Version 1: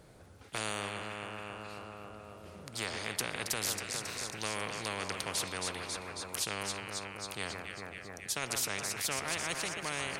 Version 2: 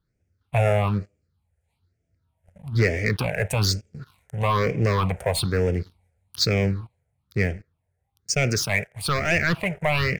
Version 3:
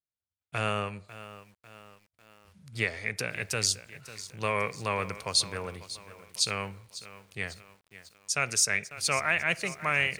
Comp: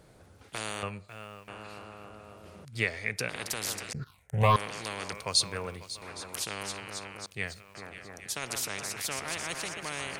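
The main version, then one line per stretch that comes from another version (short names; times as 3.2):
1
0.83–1.48 from 3
2.65–3.29 from 3
3.93–4.56 from 2
5.13–6.02 from 3
7.26–7.75 from 3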